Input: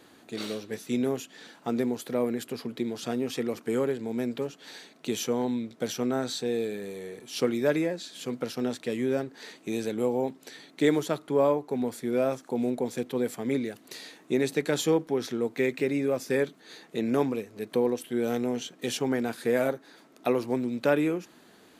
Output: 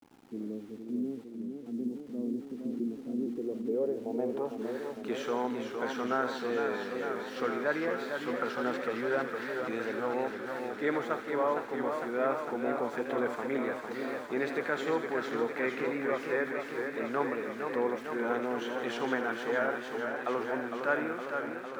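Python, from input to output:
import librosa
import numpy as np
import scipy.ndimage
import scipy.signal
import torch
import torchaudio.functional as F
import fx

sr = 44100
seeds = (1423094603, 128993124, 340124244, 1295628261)

y = fx.transient(x, sr, attack_db=-3, sustain_db=2)
y = fx.filter_sweep_lowpass(y, sr, from_hz=270.0, to_hz=1400.0, start_s=3.11, end_s=4.92, q=2.7)
y = fx.rider(y, sr, range_db=4, speed_s=0.5)
y = fx.riaa(y, sr, side='recording')
y = np.where(np.abs(y) >= 10.0 ** (-51.5 / 20.0), y, 0.0)
y = fx.echo_wet_highpass(y, sr, ms=81, feedback_pct=64, hz=1700.0, wet_db=-8.0)
y = fx.echo_warbled(y, sr, ms=457, feedback_pct=76, rate_hz=2.8, cents=113, wet_db=-6)
y = y * librosa.db_to_amplitude(-3.0)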